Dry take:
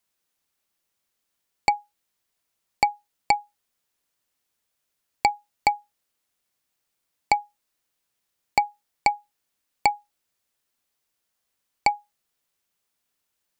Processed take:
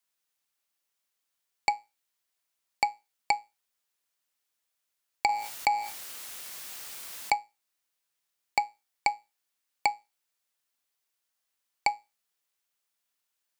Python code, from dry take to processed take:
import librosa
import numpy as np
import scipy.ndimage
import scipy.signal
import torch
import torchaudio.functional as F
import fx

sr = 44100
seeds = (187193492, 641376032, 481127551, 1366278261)

y = fx.low_shelf(x, sr, hz=460.0, db=-10.0)
y = fx.comb_fb(y, sr, f0_hz=110.0, decay_s=0.28, harmonics='all', damping=0.0, mix_pct=40)
y = fx.env_flatten(y, sr, amount_pct=70, at=(5.29, 7.34))